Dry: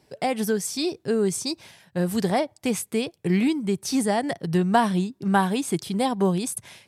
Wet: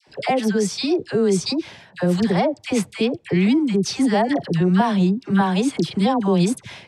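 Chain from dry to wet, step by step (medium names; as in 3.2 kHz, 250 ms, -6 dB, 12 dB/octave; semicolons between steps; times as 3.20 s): low-pass 4.9 kHz 12 dB/octave; peak limiter -19.5 dBFS, peak gain reduction 12 dB; phase dispersion lows, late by 76 ms, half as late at 980 Hz; trim +8.5 dB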